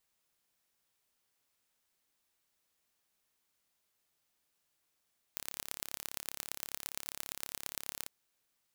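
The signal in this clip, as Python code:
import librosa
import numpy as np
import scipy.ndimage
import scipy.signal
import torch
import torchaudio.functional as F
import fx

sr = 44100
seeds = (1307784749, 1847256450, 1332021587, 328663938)

y = fx.impulse_train(sr, length_s=2.71, per_s=34.9, accent_every=4, level_db=-9.0)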